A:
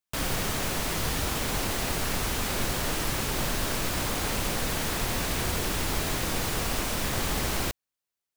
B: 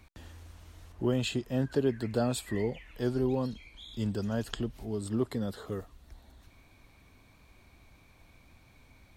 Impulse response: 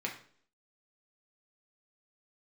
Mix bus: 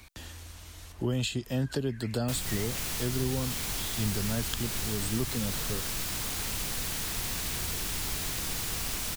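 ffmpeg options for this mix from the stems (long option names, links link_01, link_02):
-filter_complex "[0:a]equalizer=frequency=570:width_type=o:width=0.23:gain=-4,adelay=2150,volume=-6dB[link_01];[1:a]volume=3dB[link_02];[link_01][link_02]amix=inputs=2:normalize=0,highshelf=frequency=2200:gain=11.5,acrossover=split=190[link_03][link_04];[link_04]acompressor=threshold=-32dB:ratio=4[link_05];[link_03][link_05]amix=inputs=2:normalize=0"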